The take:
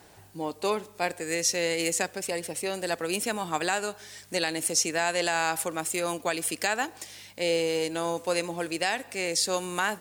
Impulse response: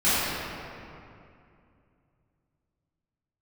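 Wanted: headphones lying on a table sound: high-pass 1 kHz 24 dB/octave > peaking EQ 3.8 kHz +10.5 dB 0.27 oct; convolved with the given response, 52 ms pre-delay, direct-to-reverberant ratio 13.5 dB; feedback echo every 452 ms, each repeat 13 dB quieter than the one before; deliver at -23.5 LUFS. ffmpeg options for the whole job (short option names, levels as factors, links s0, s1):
-filter_complex "[0:a]aecho=1:1:452|904|1356:0.224|0.0493|0.0108,asplit=2[s0][s1];[1:a]atrim=start_sample=2205,adelay=52[s2];[s1][s2]afir=irnorm=-1:irlink=0,volume=0.0251[s3];[s0][s3]amix=inputs=2:normalize=0,highpass=f=1000:w=0.5412,highpass=f=1000:w=1.3066,equalizer=f=3800:t=o:w=0.27:g=10.5,volume=1.78"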